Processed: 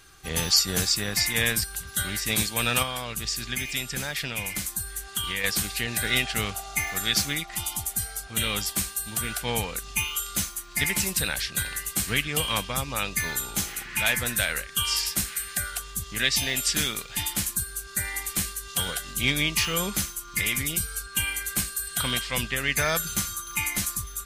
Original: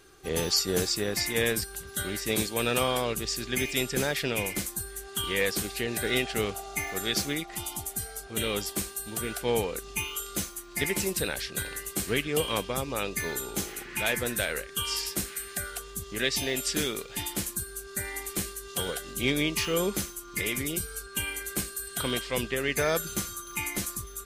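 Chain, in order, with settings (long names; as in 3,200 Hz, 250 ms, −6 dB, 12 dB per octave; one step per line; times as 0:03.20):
0:02.82–0:05.44: downward compressor 3 to 1, threshold −31 dBFS, peak gain reduction 7 dB
parametric band 400 Hz −13.5 dB 1.3 octaves
level +5.5 dB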